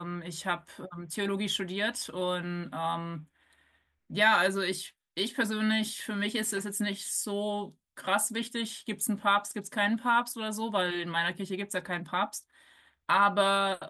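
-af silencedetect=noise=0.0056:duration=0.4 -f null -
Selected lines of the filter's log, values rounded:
silence_start: 3.23
silence_end: 4.10 | silence_duration: 0.88
silence_start: 12.40
silence_end: 13.09 | silence_duration: 0.69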